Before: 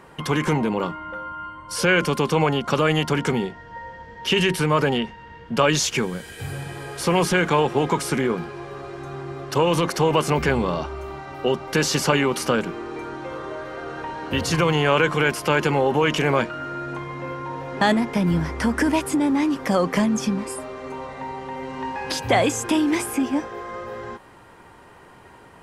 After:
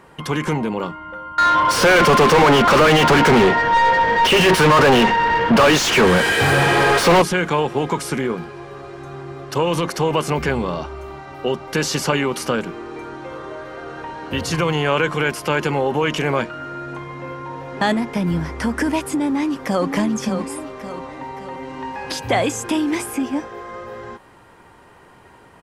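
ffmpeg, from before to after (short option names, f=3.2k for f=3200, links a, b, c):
-filter_complex "[0:a]asettb=1/sr,asplit=3[a][b][c];[a]atrim=end=1.384[d];[b]atrim=start=1.38:end=7.22,asetpts=PTS-STARTPTS,afade=t=in:d=0.004:c=qsin,afade=t=out:st=5.836:d=0.004:c=qsin,asplit=2[e][f];[f]highpass=f=720:p=1,volume=39dB,asoftclip=type=tanh:threshold=-4.5dB[g];[e][g]amix=inputs=2:normalize=0,lowpass=f=1.7k:p=1,volume=-6dB[h];[c]atrim=start=7.216[i];[d][h]acrossfade=d=0.004:c1=hsin:c2=qsin[j];[j][i]acrossfade=d=0.004:c1=qsin:c2=hsin,asplit=2[k][l];[l]afade=t=in:st=19.24:d=0.01,afade=t=out:st=19.92:d=0.01,aecho=0:1:570|1140|1710|2280|2850|3420:0.421697|0.210848|0.105424|0.0527121|0.026356|0.013178[m];[k][m]amix=inputs=2:normalize=0"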